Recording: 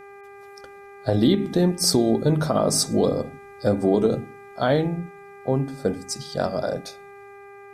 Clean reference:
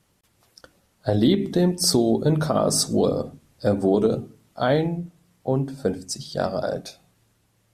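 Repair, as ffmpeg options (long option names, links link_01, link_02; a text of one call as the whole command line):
ffmpeg -i in.wav -af "bandreject=frequency=400:width_type=h:width=4,bandreject=frequency=800:width_type=h:width=4,bandreject=frequency=1200:width_type=h:width=4,bandreject=frequency=1600:width_type=h:width=4,bandreject=frequency=2000:width_type=h:width=4,bandreject=frequency=2400:width_type=h:width=4" out.wav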